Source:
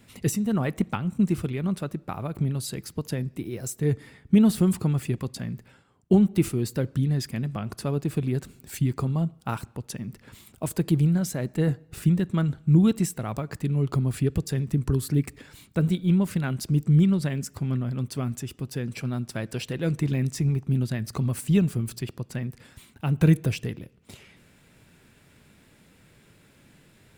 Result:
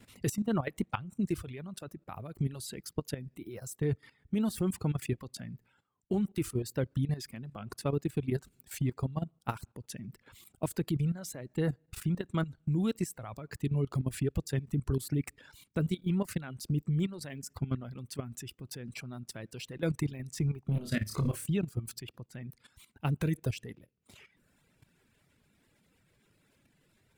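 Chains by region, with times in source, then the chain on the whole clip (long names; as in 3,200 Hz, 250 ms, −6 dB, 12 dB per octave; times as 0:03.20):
0:20.64–0:21.46: parametric band 760 Hz −11.5 dB 0.37 octaves + leveller curve on the samples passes 1 + flutter between parallel walls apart 4.9 metres, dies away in 0.43 s
whole clip: reverb reduction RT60 1.1 s; dynamic equaliser 180 Hz, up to −4 dB, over −35 dBFS, Q 1.7; output level in coarse steps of 14 dB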